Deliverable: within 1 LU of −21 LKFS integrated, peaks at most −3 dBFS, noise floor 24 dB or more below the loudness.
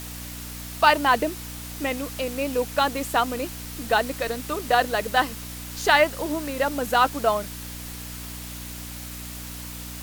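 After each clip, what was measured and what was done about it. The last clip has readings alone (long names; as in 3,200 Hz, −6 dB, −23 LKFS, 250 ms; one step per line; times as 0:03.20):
mains hum 60 Hz; hum harmonics up to 300 Hz; level of the hum −37 dBFS; background noise floor −37 dBFS; target noise floor −49 dBFS; integrated loudness −25.0 LKFS; sample peak −4.5 dBFS; target loudness −21.0 LKFS
→ hum removal 60 Hz, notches 5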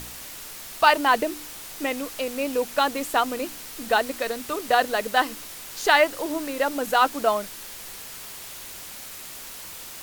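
mains hum none found; background noise floor −39 dBFS; target noise floor −48 dBFS
→ broadband denoise 9 dB, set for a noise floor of −39 dBFS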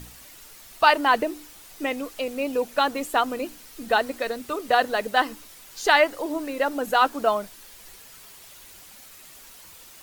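background noise floor −47 dBFS; target noise floor −48 dBFS
→ broadband denoise 6 dB, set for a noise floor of −47 dBFS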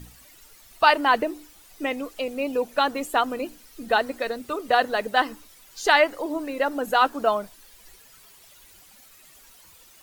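background noise floor −52 dBFS; integrated loudness −24.0 LKFS; sample peak −4.5 dBFS; target loudness −21.0 LKFS
→ level +3 dB
brickwall limiter −3 dBFS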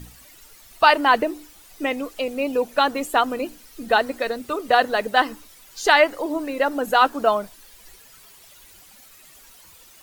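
integrated loudness −21.0 LKFS; sample peak −3.0 dBFS; background noise floor −49 dBFS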